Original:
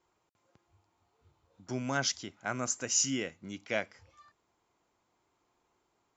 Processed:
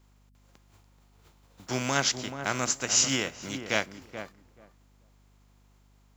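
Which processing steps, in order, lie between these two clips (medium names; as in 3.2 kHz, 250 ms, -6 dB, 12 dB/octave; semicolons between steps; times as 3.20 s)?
spectral contrast reduction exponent 0.57; filtered feedback delay 431 ms, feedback 17%, low-pass 1 kHz, level -8 dB; hum 50 Hz, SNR 28 dB; trim +5 dB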